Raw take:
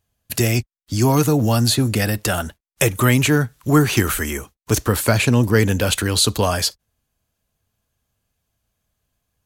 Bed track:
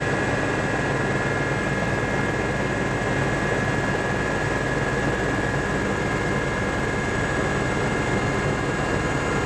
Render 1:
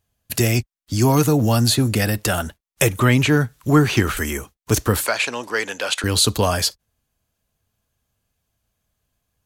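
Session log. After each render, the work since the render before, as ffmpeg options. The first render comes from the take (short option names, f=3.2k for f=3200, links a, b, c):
-filter_complex "[0:a]asettb=1/sr,asplit=3[a][b][c];[a]atrim=end=2.894[d];[b]atrim=start=2.89:end=4.17,asetpts=PTS-STARTPTS,afade=t=in:d=0.004:c=qsin,afade=t=out:st=1.276:d=0.004:c=qsin,acrossover=split=5800[e][f];[f]acompressor=threshold=-37dB:ratio=4:attack=1:release=60[g];[e][g]amix=inputs=2:normalize=0[h];[c]atrim=start=4.166[i];[d][h]acrossfade=d=0.004:c1=hsin:c2=qsin[j];[j][i]acrossfade=d=0.004:c1=qsin:c2=hsin,asettb=1/sr,asplit=3[k][l][m];[k]atrim=end=5.064[n];[l]atrim=start=5.06:end=6.04,asetpts=PTS-STARTPTS,afade=t=in:d=0.004:c=qsin,afade=t=out:st=0.976:d=0.004:c=qsin,highpass=670,lowpass=7k[o];[m]atrim=start=6.036[p];[n][o]acrossfade=d=0.004:c1=hsin:c2=qsin[q];[q][p]acrossfade=d=0.004:c1=qsin:c2=hsin"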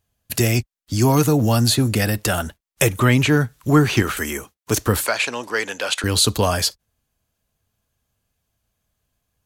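-filter_complex "[0:a]asettb=1/sr,asplit=3[a][b][c];[a]atrim=end=4.024[d];[b]atrim=start=4.02:end=4.81,asetpts=PTS-STARTPTS,afade=t=in:d=0.004:c=qsin,afade=t=out:st=0.786:d=0.004:c=qsin,highpass=f=160:p=1[e];[c]atrim=start=4.806[f];[d][e]acrossfade=d=0.004:c1=hsin:c2=qsin[g];[g][f]acrossfade=d=0.004:c1=qsin:c2=hsin"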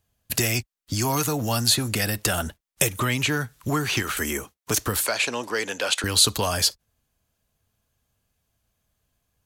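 -filter_complex "[0:a]acrossover=split=730|2800[a][b][c];[a]acompressor=threshold=-25dB:ratio=6[d];[b]alimiter=limit=-20dB:level=0:latency=1:release=238[e];[d][e][c]amix=inputs=3:normalize=0"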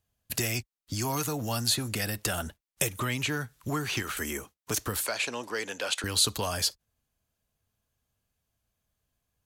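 -af "volume=-6.5dB"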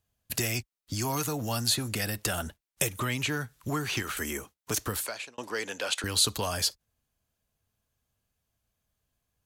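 -filter_complex "[0:a]asplit=2[a][b];[a]atrim=end=5.38,asetpts=PTS-STARTPTS,afade=t=out:st=4.91:d=0.47[c];[b]atrim=start=5.38,asetpts=PTS-STARTPTS,afade=t=in:d=0.004:c=hsin[d];[c][d]concat=n=2:v=0:a=1"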